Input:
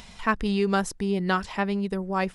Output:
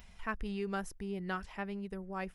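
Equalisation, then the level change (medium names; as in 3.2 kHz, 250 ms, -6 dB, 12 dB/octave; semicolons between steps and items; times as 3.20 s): graphic EQ 125/250/500/1000/2000/4000/8000 Hz -7/-8/-6/-8/-3/-11/-10 dB; -4.5 dB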